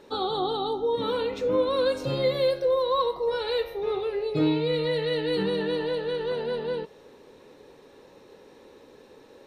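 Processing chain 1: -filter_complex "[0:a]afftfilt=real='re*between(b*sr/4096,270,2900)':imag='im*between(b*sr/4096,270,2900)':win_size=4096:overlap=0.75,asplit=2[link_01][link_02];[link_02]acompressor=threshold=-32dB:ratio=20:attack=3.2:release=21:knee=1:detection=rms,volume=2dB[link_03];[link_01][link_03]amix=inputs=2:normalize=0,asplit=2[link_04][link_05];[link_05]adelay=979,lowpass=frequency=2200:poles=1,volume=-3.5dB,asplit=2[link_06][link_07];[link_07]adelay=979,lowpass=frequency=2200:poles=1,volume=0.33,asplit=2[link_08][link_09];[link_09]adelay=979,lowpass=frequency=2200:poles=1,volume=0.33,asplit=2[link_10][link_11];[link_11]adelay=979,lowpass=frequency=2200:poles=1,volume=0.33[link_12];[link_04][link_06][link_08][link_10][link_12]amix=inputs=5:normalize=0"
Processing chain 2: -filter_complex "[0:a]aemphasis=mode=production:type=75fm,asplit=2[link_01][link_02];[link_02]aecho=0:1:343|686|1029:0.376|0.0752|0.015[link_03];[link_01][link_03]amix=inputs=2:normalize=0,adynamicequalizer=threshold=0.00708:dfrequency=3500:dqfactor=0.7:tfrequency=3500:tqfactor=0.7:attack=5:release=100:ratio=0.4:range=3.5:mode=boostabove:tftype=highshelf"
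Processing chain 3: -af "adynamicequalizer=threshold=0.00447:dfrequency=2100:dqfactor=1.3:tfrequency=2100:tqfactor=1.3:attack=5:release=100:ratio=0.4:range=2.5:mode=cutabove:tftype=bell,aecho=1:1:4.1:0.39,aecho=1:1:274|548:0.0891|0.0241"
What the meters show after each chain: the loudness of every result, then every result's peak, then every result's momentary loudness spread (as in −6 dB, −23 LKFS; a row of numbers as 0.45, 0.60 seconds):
−22.5, −24.5, −25.0 LKFS; −10.0, −11.5, −12.0 dBFS; 15, 6, 6 LU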